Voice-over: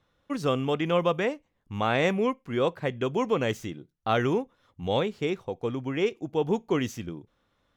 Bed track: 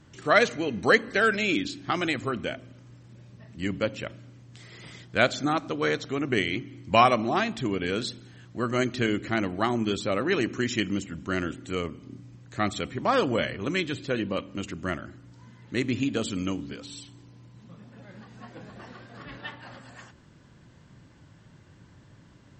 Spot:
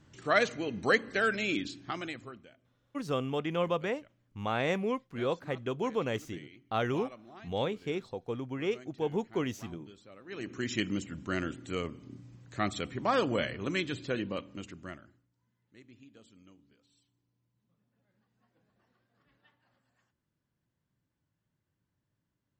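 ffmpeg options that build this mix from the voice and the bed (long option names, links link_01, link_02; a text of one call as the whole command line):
ffmpeg -i stem1.wav -i stem2.wav -filter_complex "[0:a]adelay=2650,volume=-6dB[link_01];[1:a]volume=15.5dB,afade=type=out:start_time=1.59:duration=0.89:silence=0.1,afade=type=in:start_time=10.25:duration=0.54:silence=0.0841395,afade=type=out:start_time=14.07:duration=1.21:silence=0.0595662[link_02];[link_01][link_02]amix=inputs=2:normalize=0" out.wav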